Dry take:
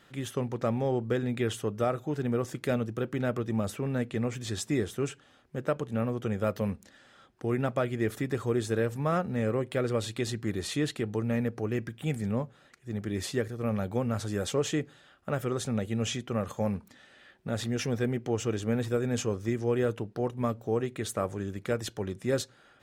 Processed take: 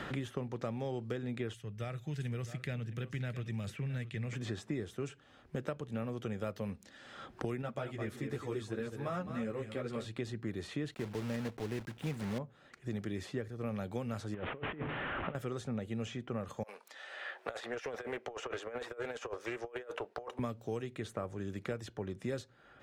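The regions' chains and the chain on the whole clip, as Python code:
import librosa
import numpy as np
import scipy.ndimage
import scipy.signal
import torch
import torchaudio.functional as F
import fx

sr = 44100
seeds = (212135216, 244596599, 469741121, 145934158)

y = fx.chain(x, sr, fx.band_shelf(hz=550.0, db=-15.0, octaves=3.0),
    fx.echo_single(ms=663, db=-14.5), at=(1.54, 4.33))
y = fx.chain(y, sr, fx.echo_single(ms=213, db=-10.0),
    fx.ensemble(), at=(7.62, 10.06))
y = fx.chain(y, sr, fx.block_float(bits=3),
    fx.notch(hz=1200.0, q=17.0), at=(10.92, 12.39))
y = fx.chain(y, sr, fx.delta_mod(bps=16000, step_db=-33.0),
    fx.over_compress(threshold_db=-34.0, ratio=-0.5), at=(14.34, 15.35))
y = fx.chain(y, sr, fx.highpass(hz=510.0, slope=24),
    fx.over_compress(threshold_db=-40.0, ratio=-0.5),
    fx.doppler_dist(depth_ms=0.16), at=(16.63, 20.39))
y = fx.high_shelf(y, sr, hz=7700.0, db=-11.0)
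y = fx.band_squash(y, sr, depth_pct=100)
y = y * librosa.db_to_amplitude(-8.0)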